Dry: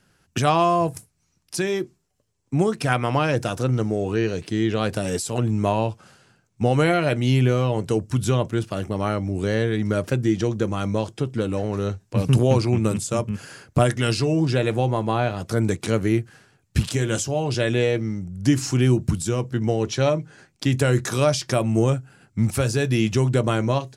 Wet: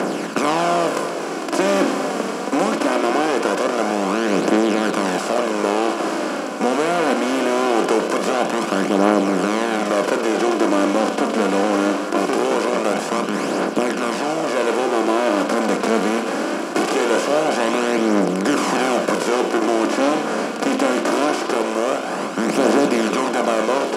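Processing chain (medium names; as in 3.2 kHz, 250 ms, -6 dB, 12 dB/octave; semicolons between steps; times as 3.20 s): spectral levelling over time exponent 0.2; elliptic high-pass 190 Hz, stop band 40 dB; treble shelf 3.7 kHz -6.5 dB; level rider; phaser 0.22 Hz, delay 4.5 ms, feedback 43%; on a send: repeats whose band climbs or falls 117 ms, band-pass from 3.4 kHz, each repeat -1.4 oct, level -3.5 dB; on the sum: trim -5 dB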